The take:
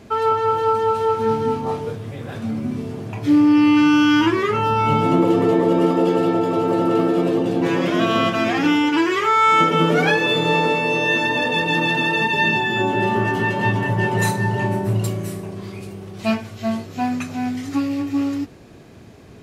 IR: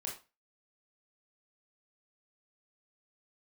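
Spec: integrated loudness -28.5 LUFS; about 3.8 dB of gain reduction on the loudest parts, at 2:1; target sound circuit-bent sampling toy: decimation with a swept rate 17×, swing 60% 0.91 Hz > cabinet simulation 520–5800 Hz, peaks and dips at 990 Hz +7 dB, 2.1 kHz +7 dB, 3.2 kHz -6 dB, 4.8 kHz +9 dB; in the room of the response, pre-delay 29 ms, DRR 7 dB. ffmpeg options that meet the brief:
-filter_complex "[0:a]acompressor=threshold=0.126:ratio=2,asplit=2[s0][s1];[1:a]atrim=start_sample=2205,adelay=29[s2];[s1][s2]afir=irnorm=-1:irlink=0,volume=0.473[s3];[s0][s3]amix=inputs=2:normalize=0,acrusher=samples=17:mix=1:aa=0.000001:lfo=1:lforange=10.2:lforate=0.91,highpass=520,equalizer=f=990:t=q:w=4:g=7,equalizer=f=2100:t=q:w=4:g=7,equalizer=f=3200:t=q:w=4:g=-6,equalizer=f=4800:t=q:w=4:g=9,lowpass=f=5800:w=0.5412,lowpass=f=5800:w=1.3066,volume=0.447"

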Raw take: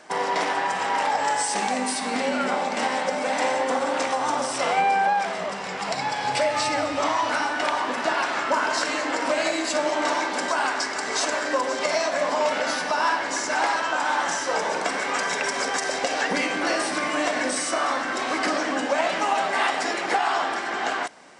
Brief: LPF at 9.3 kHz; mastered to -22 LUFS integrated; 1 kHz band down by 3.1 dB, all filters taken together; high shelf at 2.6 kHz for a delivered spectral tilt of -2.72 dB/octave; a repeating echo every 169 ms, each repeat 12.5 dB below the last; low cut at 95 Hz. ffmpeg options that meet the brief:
-af "highpass=95,lowpass=9300,equalizer=f=1000:t=o:g=-3,highshelf=f=2600:g=-6.5,aecho=1:1:169|338|507:0.237|0.0569|0.0137,volume=1.68"

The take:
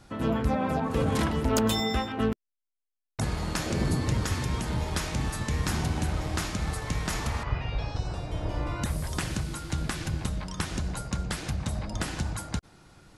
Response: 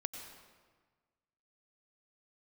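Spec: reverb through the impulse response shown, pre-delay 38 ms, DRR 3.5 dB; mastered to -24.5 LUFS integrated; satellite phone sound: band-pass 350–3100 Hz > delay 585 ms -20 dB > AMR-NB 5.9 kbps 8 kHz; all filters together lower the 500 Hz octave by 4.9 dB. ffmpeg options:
-filter_complex "[0:a]equalizer=f=500:t=o:g=-4.5,asplit=2[s0][s1];[1:a]atrim=start_sample=2205,adelay=38[s2];[s1][s2]afir=irnorm=-1:irlink=0,volume=0.708[s3];[s0][s3]amix=inputs=2:normalize=0,highpass=350,lowpass=3100,aecho=1:1:585:0.1,volume=5.31" -ar 8000 -c:a libopencore_amrnb -b:a 5900

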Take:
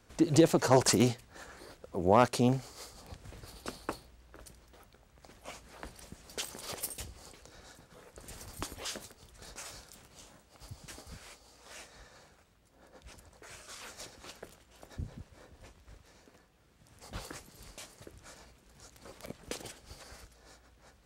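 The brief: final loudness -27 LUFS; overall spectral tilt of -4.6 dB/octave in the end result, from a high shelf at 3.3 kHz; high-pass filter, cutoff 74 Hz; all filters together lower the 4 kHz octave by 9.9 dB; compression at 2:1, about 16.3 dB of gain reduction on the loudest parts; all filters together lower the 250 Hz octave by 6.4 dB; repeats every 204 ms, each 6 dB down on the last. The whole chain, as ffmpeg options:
-af "highpass=74,equalizer=f=250:t=o:g=-9,highshelf=f=3300:g=-6.5,equalizer=f=4000:t=o:g=-8,acompressor=threshold=0.00282:ratio=2,aecho=1:1:204|408|612|816|1020|1224:0.501|0.251|0.125|0.0626|0.0313|0.0157,volume=15.8"

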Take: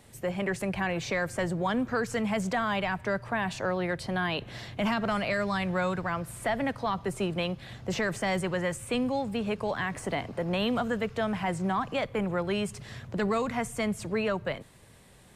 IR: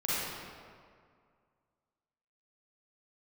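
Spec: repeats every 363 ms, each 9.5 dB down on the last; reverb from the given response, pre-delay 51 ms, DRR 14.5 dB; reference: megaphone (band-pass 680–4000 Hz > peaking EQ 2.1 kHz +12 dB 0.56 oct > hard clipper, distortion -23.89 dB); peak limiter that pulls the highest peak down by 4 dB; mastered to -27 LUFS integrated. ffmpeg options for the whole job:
-filter_complex "[0:a]alimiter=limit=0.0708:level=0:latency=1,aecho=1:1:363|726|1089|1452:0.335|0.111|0.0365|0.012,asplit=2[s0][s1];[1:a]atrim=start_sample=2205,adelay=51[s2];[s1][s2]afir=irnorm=-1:irlink=0,volume=0.0668[s3];[s0][s3]amix=inputs=2:normalize=0,highpass=680,lowpass=4000,equalizer=f=2100:t=o:w=0.56:g=12,asoftclip=type=hard:threshold=0.0841,volume=1.68"

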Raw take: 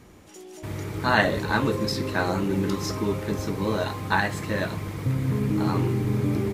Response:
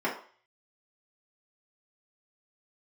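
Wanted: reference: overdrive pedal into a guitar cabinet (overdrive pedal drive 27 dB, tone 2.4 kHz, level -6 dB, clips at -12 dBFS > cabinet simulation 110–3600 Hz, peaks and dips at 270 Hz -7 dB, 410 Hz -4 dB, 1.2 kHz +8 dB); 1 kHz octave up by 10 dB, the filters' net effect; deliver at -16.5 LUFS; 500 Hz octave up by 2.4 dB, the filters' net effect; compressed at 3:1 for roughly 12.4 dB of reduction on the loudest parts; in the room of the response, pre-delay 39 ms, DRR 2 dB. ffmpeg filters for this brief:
-filter_complex "[0:a]equalizer=f=500:t=o:g=3,equalizer=f=1000:t=o:g=8,acompressor=threshold=0.0398:ratio=3,asplit=2[s0][s1];[1:a]atrim=start_sample=2205,adelay=39[s2];[s1][s2]afir=irnorm=-1:irlink=0,volume=0.237[s3];[s0][s3]amix=inputs=2:normalize=0,asplit=2[s4][s5];[s5]highpass=f=720:p=1,volume=22.4,asoftclip=type=tanh:threshold=0.251[s6];[s4][s6]amix=inputs=2:normalize=0,lowpass=f=2400:p=1,volume=0.501,highpass=110,equalizer=f=270:t=q:w=4:g=-7,equalizer=f=410:t=q:w=4:g=-4,equalizer=f=1200:t=q:w=4:g=8,lowpass=f=3600:w=0.5412,lowpass=f=3600:w=1.3066,volume=1.41"

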